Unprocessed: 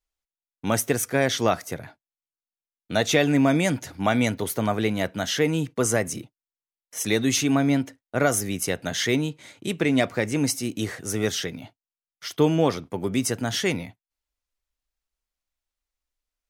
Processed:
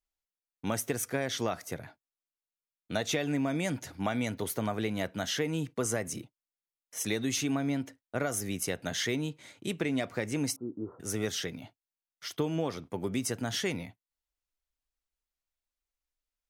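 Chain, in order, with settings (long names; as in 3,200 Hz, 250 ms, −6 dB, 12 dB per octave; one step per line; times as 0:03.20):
downward compressor, threshold −21 dBFS, peak gain reduction 8 dB
0:10.56–0:11.00: Chebyshev low-pass with heavy ripple 1,400 Hz, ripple 9 dB
level −5.5 dB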